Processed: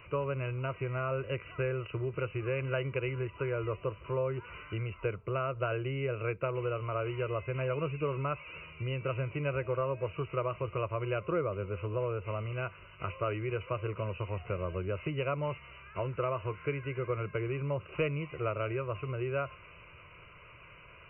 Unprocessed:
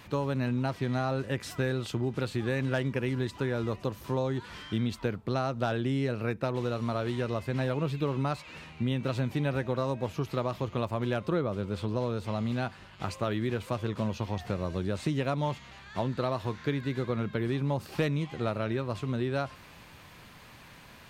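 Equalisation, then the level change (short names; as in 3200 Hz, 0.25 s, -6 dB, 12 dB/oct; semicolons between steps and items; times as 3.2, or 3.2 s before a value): brick-wall FIR low-pass 3000 Hz; bell 2000 Hz +7 dB 0.56 oct; fixed phaser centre 1200 Hz, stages 8; 0.0 dB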